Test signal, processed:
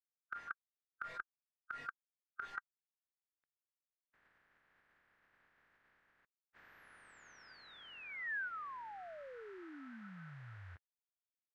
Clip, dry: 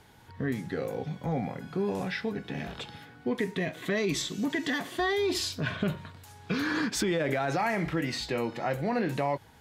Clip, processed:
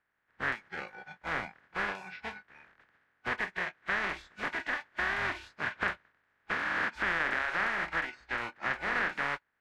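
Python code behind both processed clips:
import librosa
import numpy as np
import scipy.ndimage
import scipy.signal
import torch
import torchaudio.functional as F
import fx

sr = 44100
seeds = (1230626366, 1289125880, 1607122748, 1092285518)

y = fx.spec_flatten(x, sr, power=0.13)
y = fx.noise_reduce_blind(y, sr, reduce_db=20)
y = fx.lowpass_res(y, sr, hz=1700.0, q=3.8)
y = y * librosa.db_to_amplitude(-2.5)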